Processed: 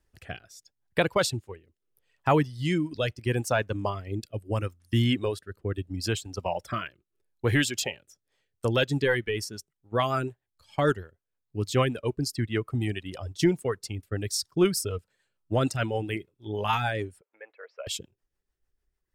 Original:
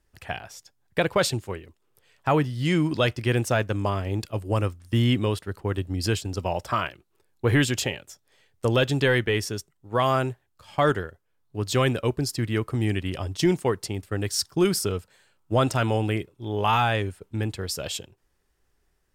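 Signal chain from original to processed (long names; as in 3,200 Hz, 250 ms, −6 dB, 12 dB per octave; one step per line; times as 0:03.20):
0:17.21–0:17.87: Chebyshev band-pass filter 520–2,300 Hz, order 3
reverb reduction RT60 2 s
rotating-speaker cabinet horn 0.75 Hz, later 6.7 Hz, at 0:07.96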